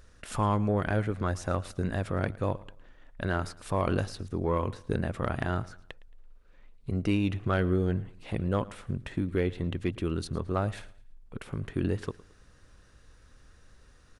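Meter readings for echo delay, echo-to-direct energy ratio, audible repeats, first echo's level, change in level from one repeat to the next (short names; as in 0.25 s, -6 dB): 0.111 s, -20.0 dB, 2, -20.5 dB, -9.0 dB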